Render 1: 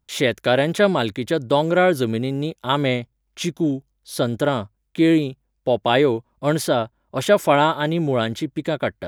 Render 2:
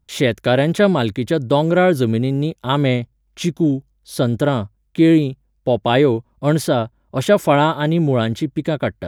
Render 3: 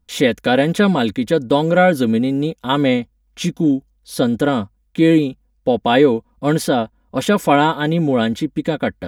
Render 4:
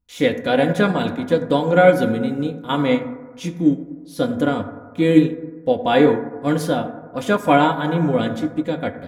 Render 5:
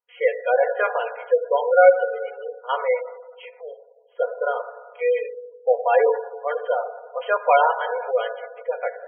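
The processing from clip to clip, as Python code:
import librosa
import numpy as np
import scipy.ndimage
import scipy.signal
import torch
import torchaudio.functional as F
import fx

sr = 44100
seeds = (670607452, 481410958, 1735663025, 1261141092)

y1 = fx.low_shelf(x, sr, hz=280.0, db=8.5)
y2 = y1 + 0.65 * np.pad(y1, (int(4.1 * sr / 1000.0), 0))[:len(y1)]
y3 = fx.rev_fdn(y2, sr, rt60_s=1.8, lf_ratio=0.9, hf_ratio=0.25, size_ms=58.0, drr_db=3.5)
y3 = fx.upward_expand(y3, sr, threshold_db=-25.0, expansion=1.5)
y3 = F.gain(torch.from_numpy(y3), -1.0).numpy()
y4 = fx.brickwall_bandpass(y3, sr, low_hz=430.0, high_hz=3300.0)
y4 = fx.spec_gate(y4, sr, threshold_db=-20, keep='strong')
y4 = fx.env_lowpass(y4, sr, base_hz=2500.0, full_db=-14.5)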